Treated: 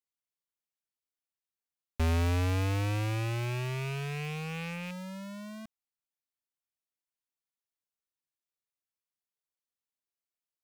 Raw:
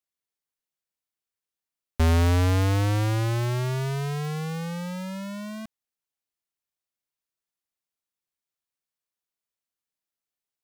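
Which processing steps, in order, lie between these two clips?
loose part that buzzes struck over −32 dBFS, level −24 dBFS
level −7.5 dB

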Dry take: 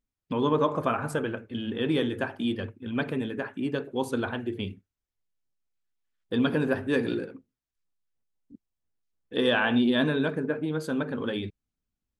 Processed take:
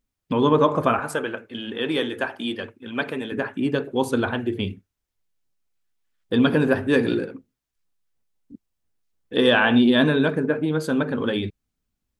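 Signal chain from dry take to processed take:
0:00.99–0:03.32: high-pass filter 530 Hz 6 dB per octave
level +6.5 dB

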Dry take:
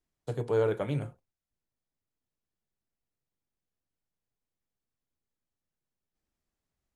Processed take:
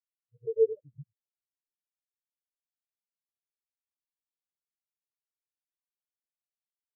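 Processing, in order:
reversed piece by piece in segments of 94 ms
every bin expanded away from the loudest bin 4 to 1
level +2.5 dB

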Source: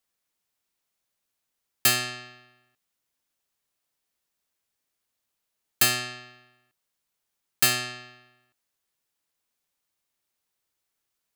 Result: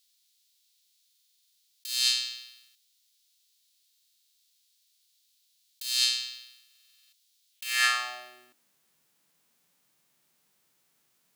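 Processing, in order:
spectral envelope flattened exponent 0.6
compressor whose output falls as the input rises −34 dBFS, ratio −1
high-pass filter sweep 3,900 Hz → 160 Hz, 0:07.50–0:08.72
buffer that repeats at 0:01.07/0:03.88/0:06.66, samples 2,048, times 9
level +3 dB

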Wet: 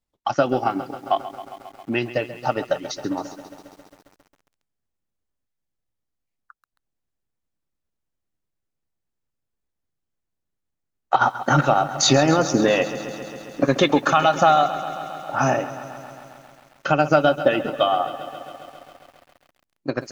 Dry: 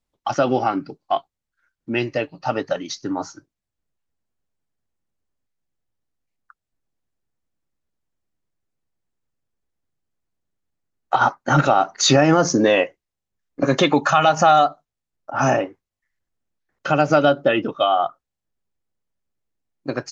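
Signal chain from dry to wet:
transient designer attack +4 dB, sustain −4 dB
feedback echo at a low word length 135 ms, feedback 80%, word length 7 bits, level −14 dB
level −3 dB

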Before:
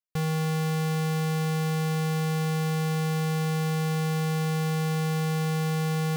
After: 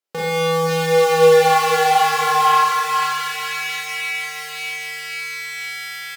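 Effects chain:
source passing by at 0:01.46, 15 m/s, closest 10 metres
high-shelf EQ 7,400 Hz −6 dB
on a send: repeating echo 488 ms, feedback 51%, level −5 dB
on the sum: high-pass filter sweep 370 Hz → 2,100 Hz, 0:00.65–0:03.97
in parallel at +2 dB: downward compressor, threshold −42 dBFS, peak gain reduction 16.5 dB
on the sum: four-comb reverb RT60 0.89 s, combs from 29 ms, DRR −5.5 dB
level +7 dB

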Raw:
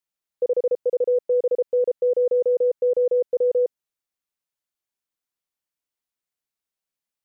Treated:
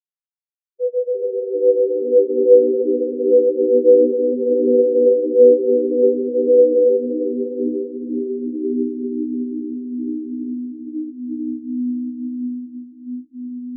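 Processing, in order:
automatic gain control gain up to 4 dB
phase-vocoder stretch with locked phases 1.9×
echo that builds up and dies away 80 ms, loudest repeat 5, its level −16.5 dB
delay with pitch and tempo change per echo 136 ms, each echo −4 semitones, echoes 3
convolution reverb RT60 3.1 s, pre-delay 6 ms, DRR −3 dB
every bin expanded away from the loudest bin 1.5 to 1
level −2.5 dB

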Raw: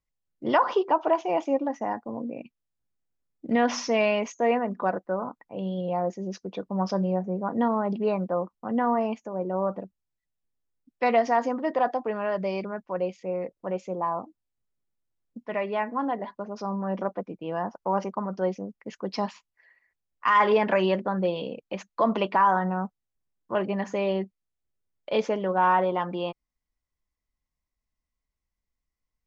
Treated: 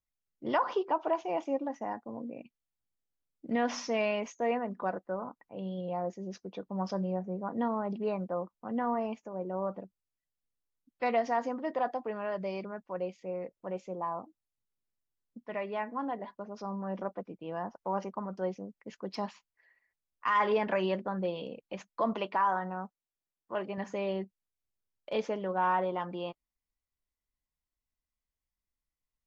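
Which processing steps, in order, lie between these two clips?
0:22.13–0:23.78: low-shelf EQ 170 Hz −11 dB
level −7 dB
AAC 64 kbit/s 48,000 Hz

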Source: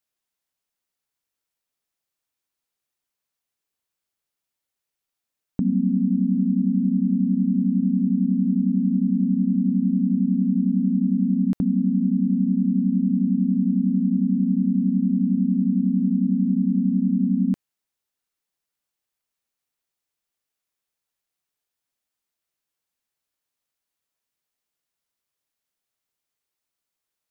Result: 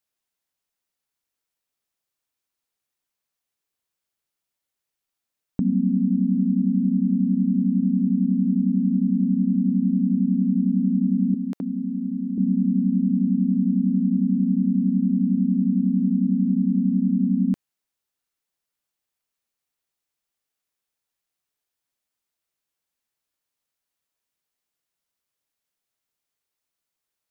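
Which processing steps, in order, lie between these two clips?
0:11.34–0:12.38: high-pass filter 300 Hz 12 dB per octave

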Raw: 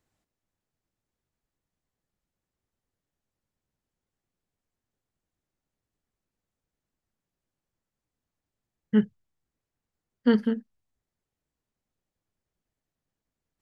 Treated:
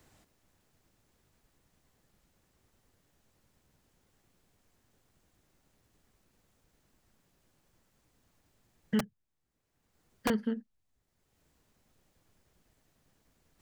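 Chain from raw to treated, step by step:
0:08.99–0:10.30: wrap-around overflow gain 17 dB
multiband upward and downward compressor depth 70%
level −5.5 dB

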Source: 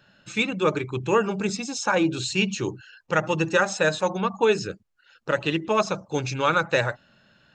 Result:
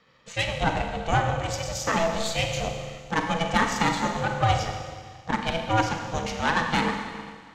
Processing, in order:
harmonic generator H 6 −19 dB, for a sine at −6 dBFS
four-comb reverb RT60 1.8 s, combs from 33 ms, DRR 4 dB
ring modulation 330 Hz

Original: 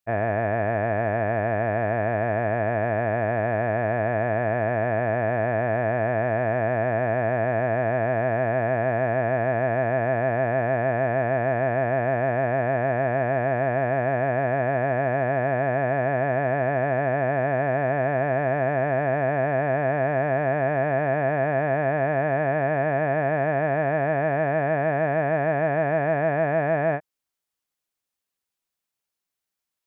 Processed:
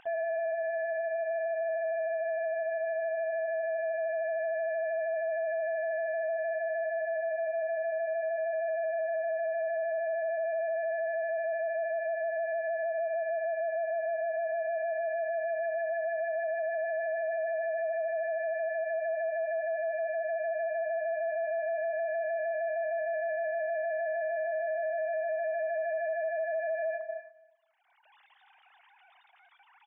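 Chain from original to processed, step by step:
three sine waves on the formant tracks
upward compression, threshold −23 dBFS
low-pass filter 1,700 Hz 6 dB per octave
repeating echo 179 ms, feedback 46%, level −23.5 dB
on a send at −12.5 dB: convolution reverb, pre-delay 55 ms
on the sum: brickwall limiter −24 dBFS, peak gain reduction 10 dB
level −2.5 dB

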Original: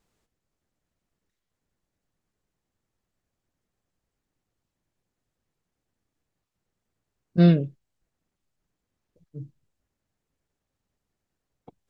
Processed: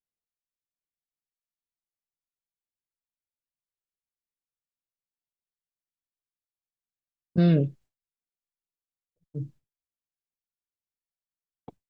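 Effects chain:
downward expander −49 dBFS
brickwall limiter −16.5 dBFS, peak gain reduction 9.5 dB
level +4.5 dB

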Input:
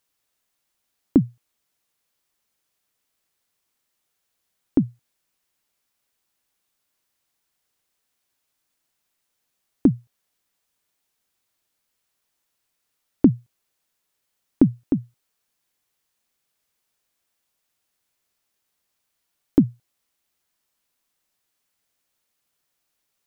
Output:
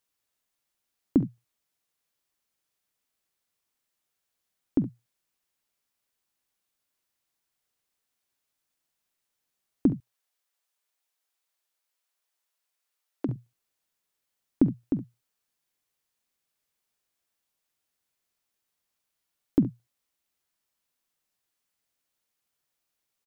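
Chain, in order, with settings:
0:09.93–0:13.29: high-pass filter 500 Hz 12 dB per octave
ambience of single reflections 47 ms −18 dB, 69 ms −14.5 dB
level −6 dB

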